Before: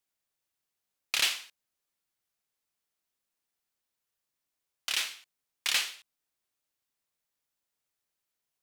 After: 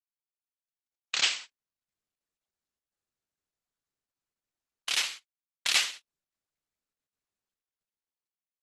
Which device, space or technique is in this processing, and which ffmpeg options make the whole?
video call: -filter_complex "[0:a]asettb=1/sr,asplit=3[s0][s1][s2];[s0]atrim=end=4.974[s3];[s1]atrim=start=4.97:end=5.97,asetpts=PTS-STARTPTS,afade=t=in:d=0.004:c=qsin,afade=t=out:st=0.996:d=0.004:c=qsin,agate=range=0.0708:threshold=0.00355:ratio=16:detection=peak[s4];[s2]atrim=start=5.966[s5];[s3][s4]acrossfade=d=0.004:c1=hsin:c2=qsin[s6];[s6][s5]acrossfade=d=0.004:c1=qsin:c2=hsin,highpass=f=110:w=0.5412,highpass=f=110:w=1.3066,dynaudnorm=f=520:g=5:m=1.58,agate=range=0.126:threshold=0.01:ratio=16:detection=peak" -ar 48000 -c:a libopus -b:a 12k

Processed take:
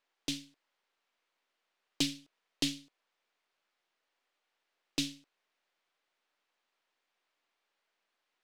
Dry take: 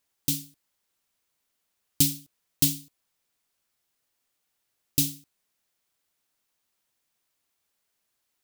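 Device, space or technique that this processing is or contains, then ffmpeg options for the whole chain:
crystal radio: -af "highpass=390,lowpass=3200,aeval=exprs='if(lt(val(0),0),0.708*val(0),val(0))':c=same,volume=1.58"

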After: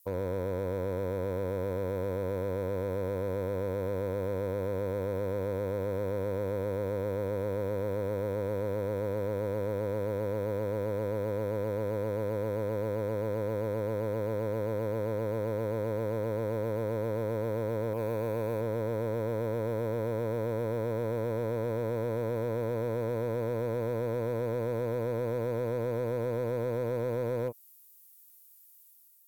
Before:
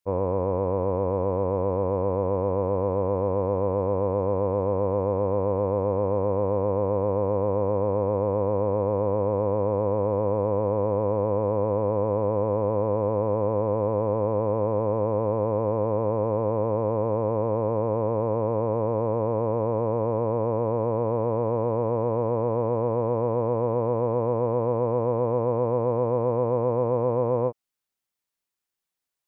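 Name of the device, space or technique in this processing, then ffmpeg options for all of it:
FM broadcast chain: -filter_complex "[0:a]asettb=1/sr,asplit=3[s0][s1][s2];[s0]atrim=end=17.934[s3];[s1]atrim=start=17.93:end=18.61,asetpts=PTS-STARTPTS,afade=t=in:d=0.004:c=qsin,afade=t=out:st=0.676:d=0.004:c=qsin,tiltshelf=f=1100:g=-4[s4];[s2]atrim=start=18.606[s5];[s3][s4]acrossfade=d=0.004:c1=hsin:c2=qsin[s6];[s6][s5]acrossfade=d=0.004:c1=qsin:c2=hsin,highpass=47,dynaudnorm=f=720:g=3:m=1.68,acrossover=split=620|2000[s7][s8][s9];[s7]acompressor=threshold=0.0562:ratio=4[s10];[s8]acompressor=threshold=0.00794:ratio=4[s11];[s9]acompressor=threshold=0.00158:ratio=4[s12];[s10][s11][s12]amix=inputs=3:normalize=0,aemphasis=mode=production:type=50fm,alimiter=limit=0.0944:level=0:latency=1:release=120,asoftclip=type=hard:threshold=0.0668,lowpass=f=15000:w=0.5412,lowpass=f=15000:w=1.3066,aemphasis=mode=production:type=50fm"

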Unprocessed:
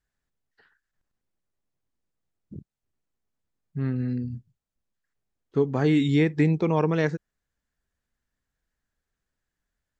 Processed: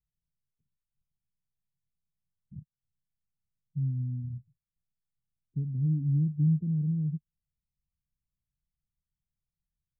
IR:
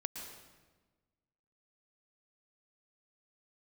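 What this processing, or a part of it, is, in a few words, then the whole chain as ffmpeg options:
the neighbour's flat through the wall: -af "lowpass=f=180:w=0.5412,lowpass=f=180:w=1.3066,equalizer=f=150:t=o:w=0.67:g=6,volume=0.562"

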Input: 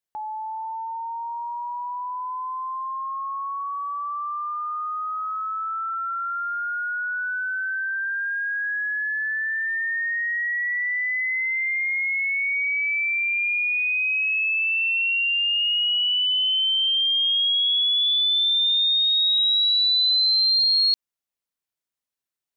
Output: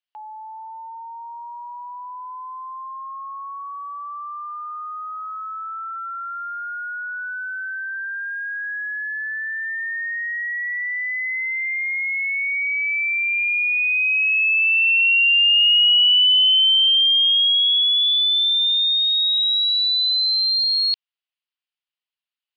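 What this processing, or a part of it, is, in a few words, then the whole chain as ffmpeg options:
musical greeting card: -af "aresample=11025,aresample=44100,highpass=850,equalizer=f=2900:t=o:w=0.55:g=10,volume=0.75"

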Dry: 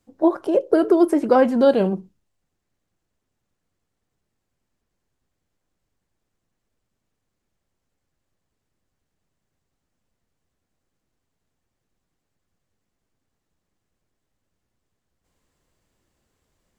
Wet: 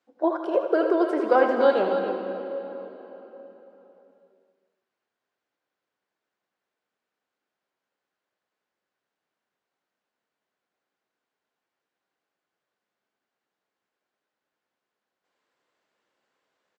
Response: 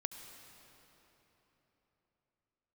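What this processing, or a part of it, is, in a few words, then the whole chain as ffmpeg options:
station announcement: -filter_complex "[0:a]highpass=460,lowpass=4100,equalizer=f=1500:t=o:w=0.2:g=5,aecho=1:1:81.63|282.8:0.316|0.355[s0];[1:a]atrim=start_sample=2205[s1];[s0][s1]afir=irnorm=-1:irlink=0"

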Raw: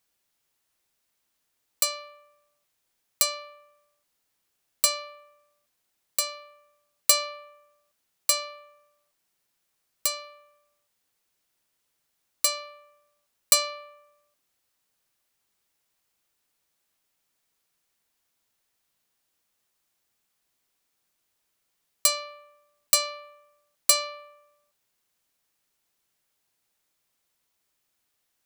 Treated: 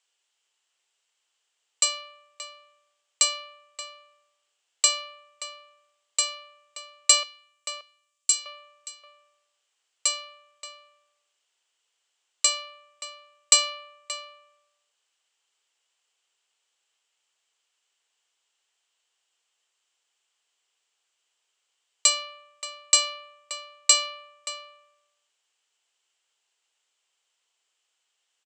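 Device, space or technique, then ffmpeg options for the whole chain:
phone speaker on a table: -filter_complex "[0:a]asettb=1/sr,asplit=3[s0][s1][s2];[s0]atrim=end=7.234[s3];[s1]atrim=start=7.23:end=8.46,asetpts=PTS-STARTPTS,afade=t=in:d=0.004:c=qsin,afade=t=out:st=1.226:d=0.004:c=qsin,aderivative[s4];[s2]atrim=start=8.456[s5];[s3][s4]acrossfade=d=0.004:c1=hsin:c2=qsin[s6];[s6][s5]acrossfade=d=0.004:c1=qsin:c2=hsin,lowpass=11000,highpass=f=430:w=0.5412,highpass=f=430:w=1.3066,equalizer=f=600:t=q:w=4:g=-4,equalizer=f=3000:t=q:w=4:g=10,equalizer=f=7600:t=q:w=4:g=9,lowpass=f=7900:w=0.5412,lowpass=f=7900:w=1.3066,asplit=2[s7][s8];[s8]adelay=577.3,volume=0.355,highshelf=f=4000:g=-13[s9];[s7][s9]amix=inputs=2:normalize=0"

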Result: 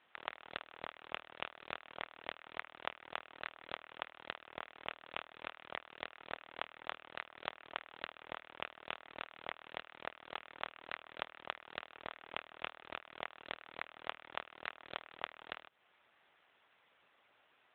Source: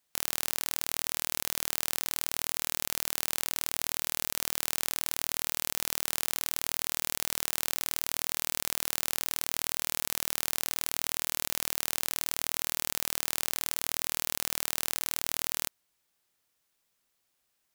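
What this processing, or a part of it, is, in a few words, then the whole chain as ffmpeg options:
voicemail: -af "highpass=370,lowpass=2800,acompressor=threshold=0.00631:ratio=8,volume=7.08" -ar 8000 -c:a libopencore_amrnb -b:a 7950

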